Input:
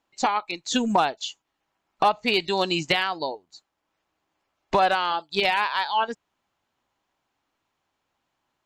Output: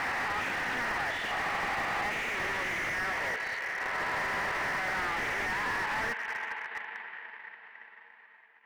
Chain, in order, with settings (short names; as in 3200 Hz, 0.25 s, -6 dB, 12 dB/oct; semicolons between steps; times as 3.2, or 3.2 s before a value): spectral swells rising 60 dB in 1.56 s; in parallel at +1.5 dB: negative-ratio compressor -25 dBFS; on the sum: fuzz box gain 39 dB, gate -44 dBFS; band-pass 1900 Hz, Q 7.9; air absorption 370 m; reverb RT60 5.1 s, pre-delay 37 ms, DRR 5 dB; transient shaper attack +11 dB, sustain -6 dB; slew limiter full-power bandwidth 27 Hz; gain +5 dB